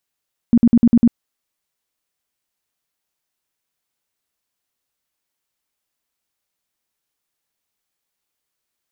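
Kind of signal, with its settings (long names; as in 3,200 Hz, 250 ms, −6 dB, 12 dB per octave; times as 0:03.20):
tone bursts 235 Hz, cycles 11, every 0.10 s, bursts 6, −7 dBFS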